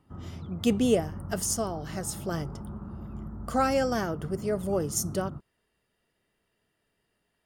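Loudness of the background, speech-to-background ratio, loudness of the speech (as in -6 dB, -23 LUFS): -40.5 LUFS, 11.0 dB, -29.5 LUFS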